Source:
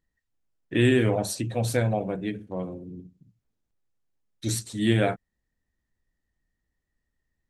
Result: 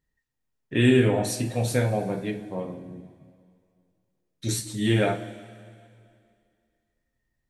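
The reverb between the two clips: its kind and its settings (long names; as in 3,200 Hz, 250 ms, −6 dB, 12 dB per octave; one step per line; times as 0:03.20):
coupled-rooms reverb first 0.27 s, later 2.3 s, from −18 dB, DRR 2 dB
level −1 dB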